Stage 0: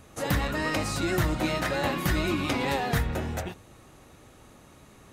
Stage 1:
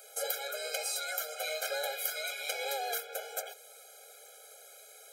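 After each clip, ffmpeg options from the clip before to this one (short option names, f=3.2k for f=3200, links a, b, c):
-af "aemphasis=mode=production:type=75kf,acompressor=threshold=-33dB:ratio=2,afftfilt=real='re*eq(mod(floor(b*sr/1024/420),2),1)':imag='im*eq(mod(floor(b*sr/1024/420),2),1)':win_size=1024:overlap=0.75"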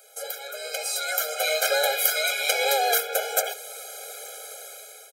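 -af "dynaudnorm=f=420:g=5:m=15dB,aecho=1:1:73:0.0841"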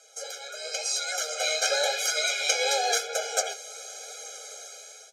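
-af "flanger=delay=6.1:depth=7.8:regen=47:speed=0.95:shape=sinusoidal,acrusher=bits=11:mix=0:aa=0.000001,lowpass=f=6.2k:t=q:w=3.2"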